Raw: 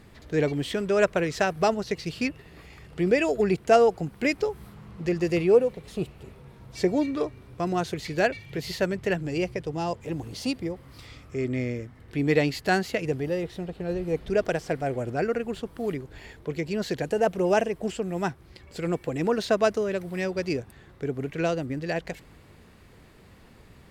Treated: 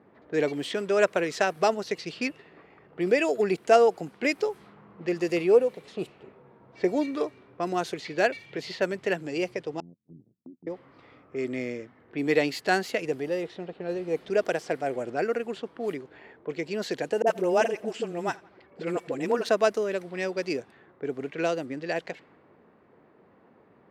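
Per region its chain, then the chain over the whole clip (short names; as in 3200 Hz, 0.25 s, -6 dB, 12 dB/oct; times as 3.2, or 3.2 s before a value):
9.8–10.67 ladder low-pass 230 Hz, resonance 40% + AM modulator 86 Hz, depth 55% + gate -48 dBFS, range -19 dB
17.22–19.49 dispersion highs, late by 46 ms, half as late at 440 Hz + feedback echo 85 ms, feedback 58%, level -24 dB
whole clip: low-pass opened by the level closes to 1000 Hz, open at -23.5 dBFS; HPF 270 Hz 12 dB/oct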